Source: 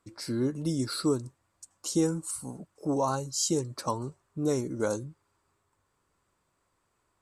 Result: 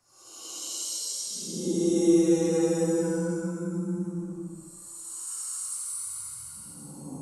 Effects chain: frequency shift +14 Hz; Paulstretch 11×, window 0.10 s, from 1.80 s

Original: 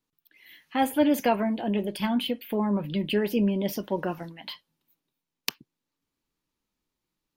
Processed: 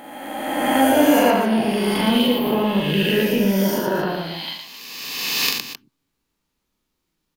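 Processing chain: reverse spectral sustain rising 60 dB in 2.01 s; 2.03–2.70 s: transient shaper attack +8 dB, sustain +3 dB; multi-tap echo 41/113/264 ms -3/-3.5/-11.5 dB; trim +1.5 dB

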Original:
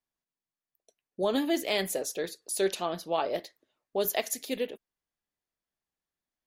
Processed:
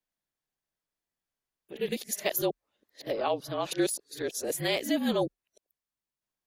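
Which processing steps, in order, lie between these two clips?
reverse the whole clip; frequency shift -39 Hz

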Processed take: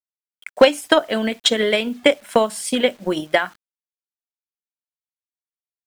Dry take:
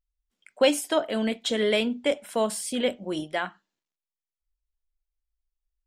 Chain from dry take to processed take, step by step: high-pass 43 Hz 6 dB/octave; peaking EQ 1.6 kHz +4.5 dB 1.9 oct; in parallel at +2 dB: compression 6:1, threshold -29 dBFS, peak gain reduction 15 dB; on the sum: transient shaper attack +9 dB, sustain -4 dB; word length cut 8-bit, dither none; trim -1 dB

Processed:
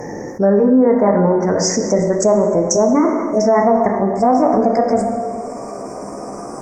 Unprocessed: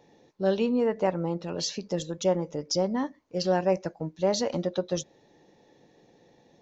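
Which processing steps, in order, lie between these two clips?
pitch bend over the whole clip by +6 st starting unshifted; elliptic band-stop 2–5.5 kHz, stop band 40 dB; de-hum 70.12 Hz, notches 35; low-pass that closes with the level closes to 1.6 kHz, closed at -24 dBFS; plate-style reverb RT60 1.3 s, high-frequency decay 0.7×, DRR 5.5 dB; loudness maximiser +17 dB; level flattener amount 50%; trim -4.5 dB

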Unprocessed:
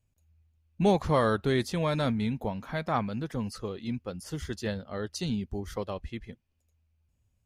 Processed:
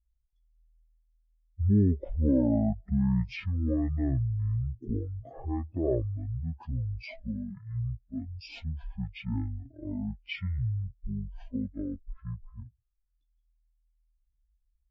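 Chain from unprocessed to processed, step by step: spectral contrast enhancement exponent 2; speed mistake 15 ips tape played at 7.5 ips

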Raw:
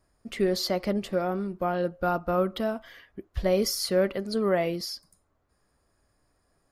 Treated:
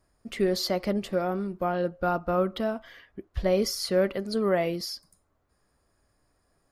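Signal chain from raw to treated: 1.68–3.94 s: treble shelf 8.9 kHz -7 dB

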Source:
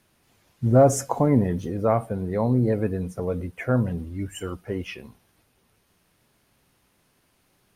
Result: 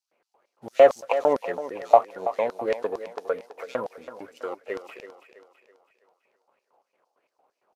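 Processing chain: median filter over 25 samples; LFO high-pass square 4.4 Hz 520–5200 Hz; on a send: thinning echo 329 ms, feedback 45%, high-pass 220 Hz, level -11.5 dB; on the sum: resampled via 32 kHz; sweeping bell 3.1 Hz 770–2400 Hz +17 dB; trim -4 dB

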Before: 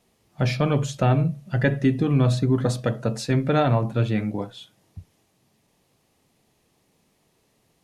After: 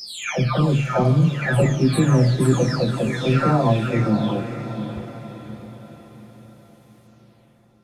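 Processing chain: delay that grows with frequency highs early, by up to 764 ms; echo that smears into a reverb 595 ms, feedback 48%, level -9.5 dB; trim +6 dB

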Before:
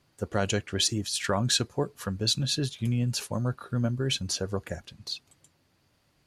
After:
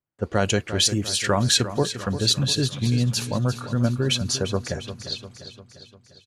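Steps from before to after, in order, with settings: gate -58 dBFS, range -29 dB; level-controlled noise filter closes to 2.3 kHz, open at -25.5 dBFS; on a send: feedback delay 349 ms, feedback 55%, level -12 dB; on the sum: trim +5.5 dB

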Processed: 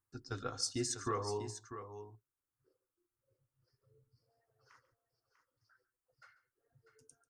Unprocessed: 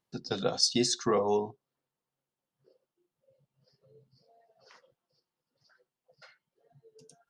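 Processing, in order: FFT filter 110 Hz 0 dB, 180 Hz -28 dB, 290 Hz -9 dB, 650 Hz -22 dB, 1.3 kHz -5 dB, 3.8 kHz -22 dB, 8.4 kHz -5 dB; multi-tap echo 141/645 ms -18/-10.5 dB; trim +3.5 dB

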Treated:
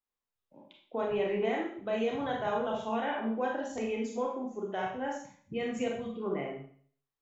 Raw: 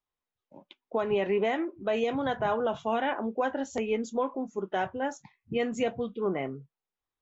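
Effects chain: 2.41–2.89 s: treble shelf 4.8 kHz +8 dB; Schroeder reverb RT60 0.52 s, combs from 28 ms, DRR -1 dB; trim -7 dB

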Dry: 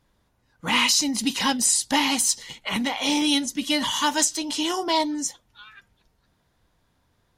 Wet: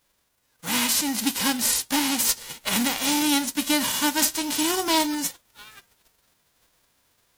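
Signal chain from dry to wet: formants flattened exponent 0.3; gain riding within 3 dB 0.5 s

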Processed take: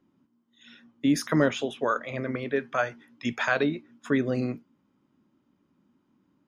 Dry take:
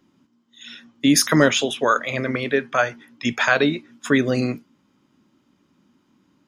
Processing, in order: treble shelf 2.4 kHz -12 dB, from 2.56 s -5.5 dB, from 3.63 s -11.5 dB; trim -6 dB

